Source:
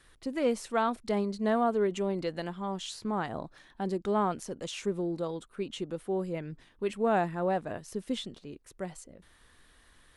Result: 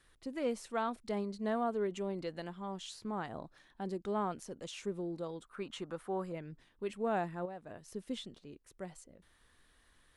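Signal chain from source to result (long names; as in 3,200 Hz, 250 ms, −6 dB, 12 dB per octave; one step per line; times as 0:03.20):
0:05.45–0:06.32: drawn EQ curve 430 Hz 0 dB, 1,200 Hz +13 dB, 2,900 Hz +2 dB
0:07.45–0:07.94: downward compressor 5 to 1, threshold −36 dBFS, peak gain reduction 10 dB
level −7 dB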